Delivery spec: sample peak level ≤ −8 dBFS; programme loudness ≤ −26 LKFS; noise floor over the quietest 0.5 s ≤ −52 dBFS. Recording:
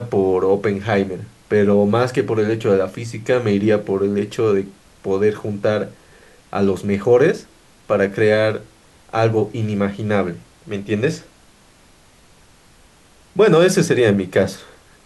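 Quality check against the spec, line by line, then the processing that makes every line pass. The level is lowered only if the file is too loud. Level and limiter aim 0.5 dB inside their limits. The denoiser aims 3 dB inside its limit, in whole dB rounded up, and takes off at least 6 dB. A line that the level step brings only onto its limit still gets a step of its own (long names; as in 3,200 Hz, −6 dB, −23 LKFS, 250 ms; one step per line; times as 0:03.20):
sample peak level −4.0 dBFS: out of spec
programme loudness −18.5 LKFS: out of spec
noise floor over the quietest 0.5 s −50 dBFS: out of spec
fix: level −8 dB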